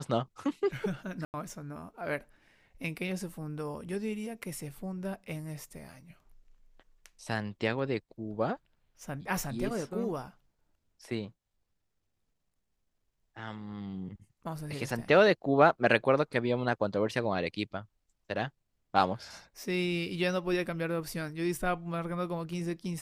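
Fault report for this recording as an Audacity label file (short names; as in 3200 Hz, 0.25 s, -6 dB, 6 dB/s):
1.250000	1.340000	gap 89 ms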